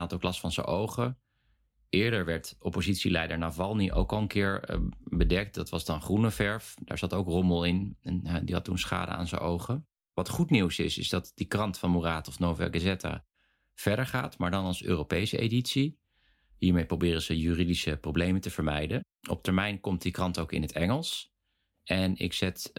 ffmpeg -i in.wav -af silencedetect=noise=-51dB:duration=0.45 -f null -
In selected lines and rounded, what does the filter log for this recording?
silence_start: 1.15
silence_end: 1.93 | silence_duration: 0.78
silence_start: 13.21
silence_end: 13.78 | silence_duration: 0.57
silence_start: 15.93
silence_end: 16.62 | silence_duration: 0.69
silence_start: 21.25
silence_end: 21.87 | silence_duration: 0.61